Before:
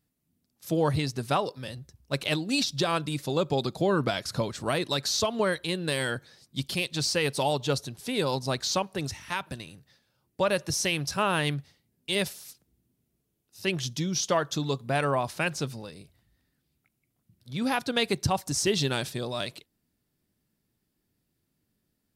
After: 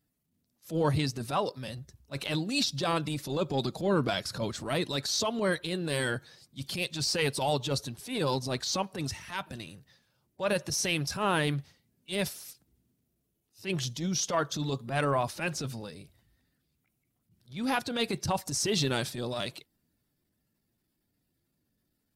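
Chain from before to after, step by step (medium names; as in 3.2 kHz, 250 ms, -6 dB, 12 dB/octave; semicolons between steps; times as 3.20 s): coarse spectral quantiser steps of 15 dB; transient shaper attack -11 dB, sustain +1 dB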